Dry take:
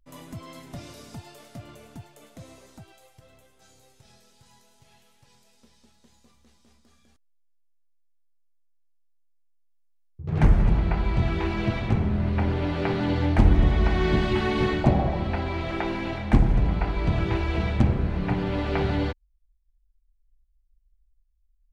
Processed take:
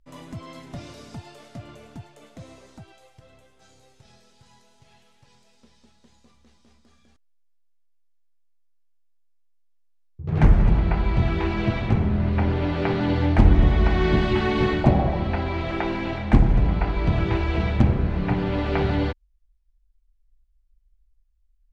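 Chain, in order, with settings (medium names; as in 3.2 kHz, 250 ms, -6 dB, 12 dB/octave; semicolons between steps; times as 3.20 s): distance through air 53 m; trim +2.5 dB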